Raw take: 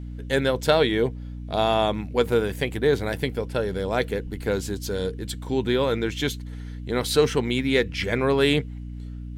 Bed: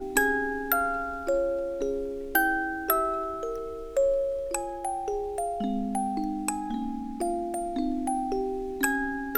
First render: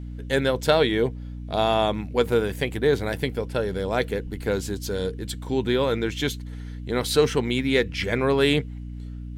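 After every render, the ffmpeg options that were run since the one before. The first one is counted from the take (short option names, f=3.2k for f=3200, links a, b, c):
-af anull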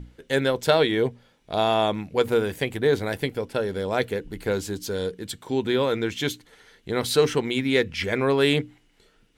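-af "bandreject=f=60:t=h:w=6,bandreject=f=120:t=h:w=6,bandreject=f=180:t=h:w=6,bandreject=f=240:t=h:w=6,bandreject=f=300:t=h:w=6"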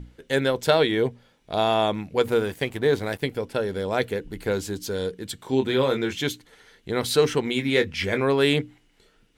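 -filter_complex "[0:a]asettb=1/sr,asplit=3[a][b][c];[a]atrim=end=2.314[d];[b]atrim=start=2.31:end=3.23,asetpts=PTS-STARTPTS,afade=t=in:d=0.004:c=qsin,afade=t=out:st=0.916:d=0.004:c=qsin,aeval=exprs='sgn(val(0))*max(abs(val(0))-0.00473,0)':c=same[e];[c]atrim=start=3.226[f];[d][e]acrossfade=d=0.004:c1=hsin:c2=qsin[g];[g][f]acrossfade=d=0.004:c1=qsin:c2=hsin,asettb=1/sr,asplit=3[h][i][j];[h]atrim=end=5.374[k];[i]atrim=start=5.37:end=6.18,asetpts=PTS-STARTPTS,afade=t=in:d=0.004:c=qsin,afade=t=out:st=0.806:d=0.004:c=qsin,asplit=2[l][m];[m]adelay=23,volume=-5.5dB[n];[l][n]amix=inputs=2:normalize=0,atrim=end_sample=35721[o];[j]atrim=start=6.176[p];[k][o]acrossfade=d=0.004:c1=hsin:c2=qsin[q];[q][p]acrossfade=d=0.004:c1=qsin:c2=hsin,asettb=1/sr,asplit=3[r][s][t];[r]atrim=end=7.444[u];[s]atrim=start=7.44:end=8.21,asetpts=PTS-STARTPTS,afade=t=in:d=0.004:c=qsin,afade=t=out:st=0.766:d=0.004:c=qsin,asplit=2[v][w];[w]adelay=21,volume=-8.5dB[x];[v][x]amix=inputs=2:normalize=0,atrim=end_sample=33957[y];[t]atrim=start=8.206[z];[u][y]acrossfade=d=0.004:c1=hsin:c2=qsin[aa];[aa][z]acrossfade=d=0.004:c1=qsin:c2=hsin"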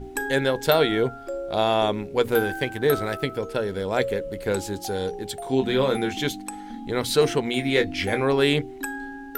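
-filter_complex "[1:a]volume=-5.5dB[a];[0:a][a]amix=inputs=2:normalize=0"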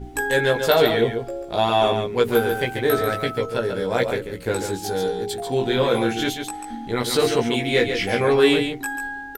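-filter_complex "[0:a]asplit=2[a][b];[b]adelay=17,volume=-2dB[c];[a][c]amix=inputs=2:normalize=0,aecho=1:1:141:0.447"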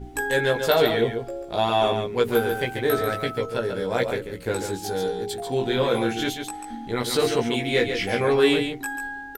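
-af "volume=-2.5dB"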